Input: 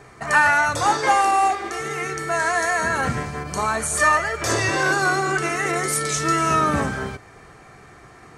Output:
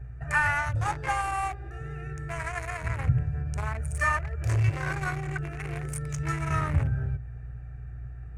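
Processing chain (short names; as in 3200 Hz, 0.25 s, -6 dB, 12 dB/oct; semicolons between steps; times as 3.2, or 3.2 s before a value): Wiener smoothing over 41 samples; hum 60 Hz, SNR 21 dB; EQ curve 130 Hz 0 dB, 200 Hz -23 dB, 380 Hz -22 dB, 2300 Hz -10 dB, 4000 Hz -20 dB, 10000 Hz -13 dB; mismatched tape noise reduction encoder only; gain +6.5 dB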